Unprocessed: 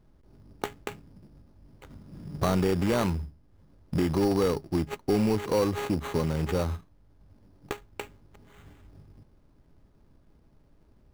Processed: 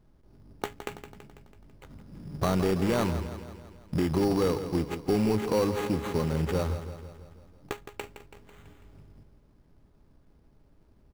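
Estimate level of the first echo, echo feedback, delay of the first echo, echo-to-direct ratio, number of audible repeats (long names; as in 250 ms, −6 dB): −11.0 dB, 57%, 165 ms, −9.5 dB, 5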